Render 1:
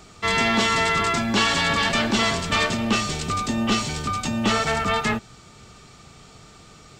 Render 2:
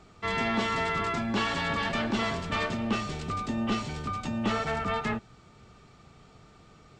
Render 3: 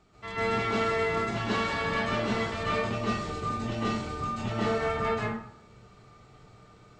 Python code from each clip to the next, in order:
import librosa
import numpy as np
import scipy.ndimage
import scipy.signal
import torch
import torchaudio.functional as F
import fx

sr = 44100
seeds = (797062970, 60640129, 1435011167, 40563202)

y1 = fx.lowpass(x, sr, hz=2000.0, slope=6)
y1 = y1 * librosa.db_to_amplitude(-6.0)
y2 = fx.rev_plate(y1, sr, seeds[0], rt60_s=0.64, hf_ratio=0.6, predelay_ms=120, drr_db=-8.0)
y2 = y2 * librosa.db_to_amplitude(-8.5)